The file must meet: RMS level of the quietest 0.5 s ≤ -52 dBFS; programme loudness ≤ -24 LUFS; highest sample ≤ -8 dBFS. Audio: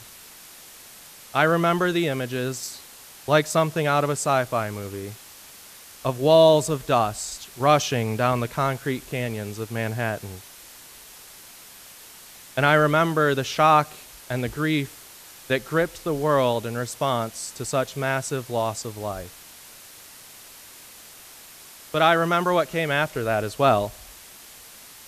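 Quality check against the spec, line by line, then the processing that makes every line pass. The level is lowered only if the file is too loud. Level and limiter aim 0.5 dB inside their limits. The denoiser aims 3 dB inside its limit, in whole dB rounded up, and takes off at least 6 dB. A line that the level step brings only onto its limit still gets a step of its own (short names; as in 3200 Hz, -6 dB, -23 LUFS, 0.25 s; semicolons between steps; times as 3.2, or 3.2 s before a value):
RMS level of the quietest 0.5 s -46 dBFS: fail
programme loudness -23.0 LUFS: fail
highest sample -5.5 dBFS: fail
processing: denoiser 8 dB, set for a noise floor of -46 dBFS; gain -1.5 dB; limiter -8.5 dBFS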